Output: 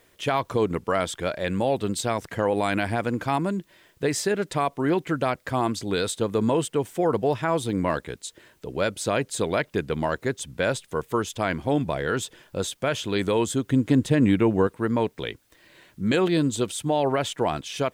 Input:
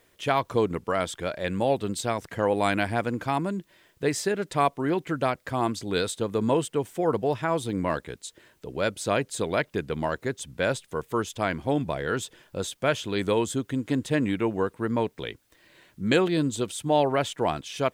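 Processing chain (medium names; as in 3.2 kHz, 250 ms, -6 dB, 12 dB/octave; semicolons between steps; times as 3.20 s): peak limiter -16 dBFS, peak gain reduction 6 dB; 13.66–14.67 s: bass shelf 370 Hz +6.5 dB; trim +3 dB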